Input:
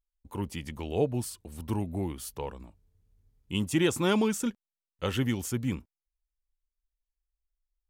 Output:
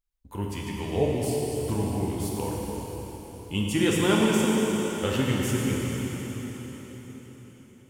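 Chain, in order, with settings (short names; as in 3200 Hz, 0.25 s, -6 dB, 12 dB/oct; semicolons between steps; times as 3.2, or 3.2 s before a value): plate-style reverb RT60 4.8 s, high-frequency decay 0.95×, DRR -4 dB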